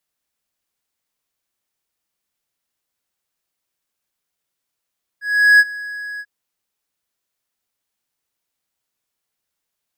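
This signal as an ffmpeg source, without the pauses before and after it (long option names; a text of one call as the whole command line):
ffmpeg -f lavfi -i "aevalsrc='0.668*(1-4*abs(mod(1670*t+0.25,1)-0.5))':duration=1.041:sample_rate=44100,afade=type=in:duration=0.385,afade=type=out:start_time=0.385:duration=0.042:silence=0.0944,afade=type=out:start_time=0.99:duration=0.051" out.wav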